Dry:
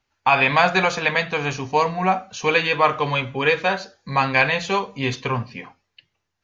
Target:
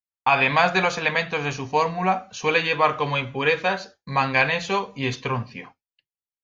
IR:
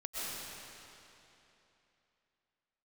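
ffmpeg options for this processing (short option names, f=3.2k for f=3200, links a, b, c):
-af "agate=range=-33dB:threshold=-37dB:ratio=3:detection=peak,volume=-2dB"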